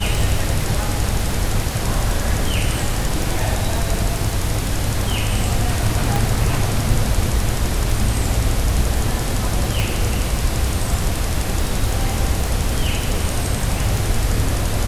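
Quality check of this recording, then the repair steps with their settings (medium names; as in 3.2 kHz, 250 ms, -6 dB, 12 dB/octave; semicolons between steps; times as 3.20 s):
crackle 44 per s -23 dBFS
6.16 s: pop
9.80 s: pop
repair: de-click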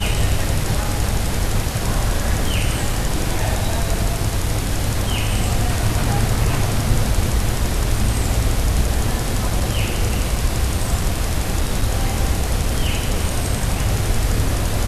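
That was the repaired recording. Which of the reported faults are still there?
nothing left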